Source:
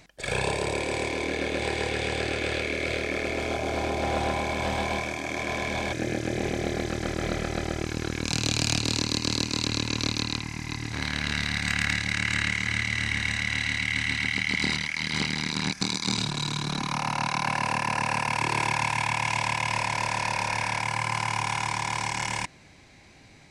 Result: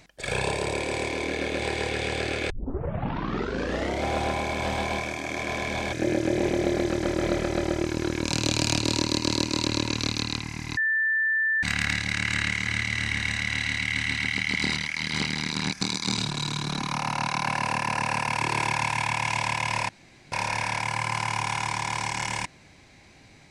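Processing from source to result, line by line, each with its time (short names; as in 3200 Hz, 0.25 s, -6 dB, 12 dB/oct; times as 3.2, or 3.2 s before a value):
2.5 tape start 1.57 s
6.02–9.93 small resonant body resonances 340/570/950 Hz, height 9 dB
10.77–11.63 bleep 1770 Hz -21 dBFS
19.89–20.32 room tone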